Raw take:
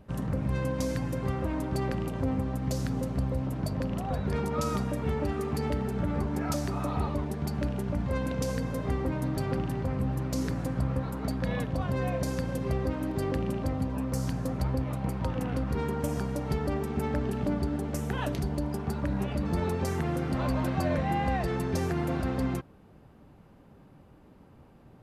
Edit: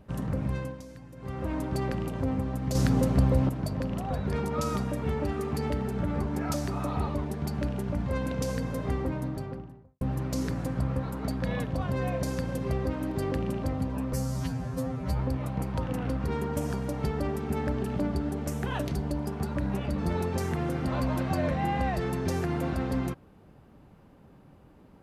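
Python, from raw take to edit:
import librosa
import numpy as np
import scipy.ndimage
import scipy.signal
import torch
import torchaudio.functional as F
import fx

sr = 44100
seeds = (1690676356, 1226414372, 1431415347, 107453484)

y = fx.studio_fade_out(x, sr, start_s=8.92, length_s=1.09)
y = fx.edit(y, sr, fx.fade_down_up(start_s=0.46, length_s=1.06, db=-15.5, fade_s=0.36),
    fx.clip_gain(start_s=2.75, length_s=0.74, db=7.0),
    fx.stretch_span(start_s=14.13, length_s=0.53, factor=2.0), tone=tone)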